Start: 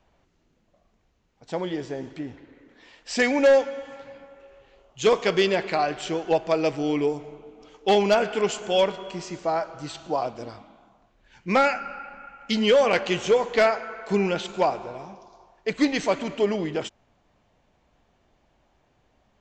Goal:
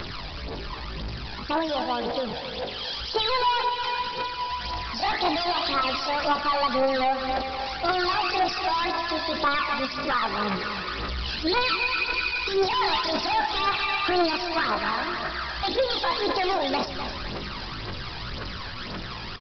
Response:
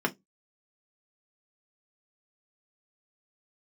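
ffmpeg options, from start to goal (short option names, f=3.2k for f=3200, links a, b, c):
-af "aeval=exprs='val(0)+0.5*0.0178*sgn(val(0))':c=same,equalizer=f=4.1k:w=0.73:g=11,dynaudnorm=f=740:g=11:m=11.5dB,flanger=delay=8.6:depth=2.3:regen=-76:speed=0.12:shape=triangular,asetrate=78577,aresample=44100,atempo=0.561231,aresample=16000,volume=25dB,asoftclip=hard,volume=-25dB,aresample=44100,aphaser=in_gain=1:out_gain=1:delay=1.3:decay=0.56:speed=1.9:type=triangular,aecho=1:1:254|508|762|1016:0.282|0.104|0.0386|0.0143,alimiter=limit=-23dB:level=0:latency=1:release=158,aresample=11025,aresample=44100,volume=7dB"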